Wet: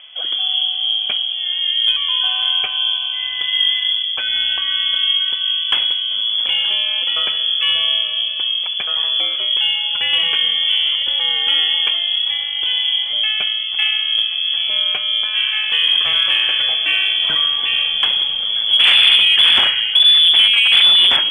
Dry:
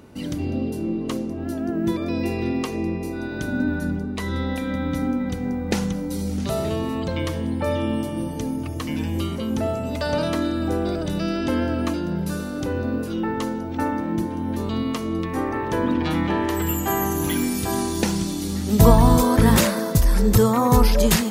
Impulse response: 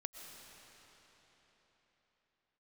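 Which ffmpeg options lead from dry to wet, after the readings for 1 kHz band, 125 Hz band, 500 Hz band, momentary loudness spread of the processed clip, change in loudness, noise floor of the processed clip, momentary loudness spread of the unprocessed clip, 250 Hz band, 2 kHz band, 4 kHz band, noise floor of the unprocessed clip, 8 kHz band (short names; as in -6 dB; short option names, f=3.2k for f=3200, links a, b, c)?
-6.0 dB, under -25 dB, -16.5 dB, 9 LU, +9.5 dB, -23 dBFS, 10 LU, under -25 dB, +12.0 dB, +26.0 dB, -29 dBFS, under -10 dB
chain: -af "aeval=exprs='0.266*(abs(mod(val(0)/0.266+3,4)-2)-1)':c=same,lowpass=f=3k:t=q:w=0.5098,lowpass=f=3k:t=q:w=0.6013,lowpass=f=3k:t=q:w=0.9,lowpass=f=3k:t=q:w=2.563,afreqshift=-3500,acontrast=26,volume=1.5dB"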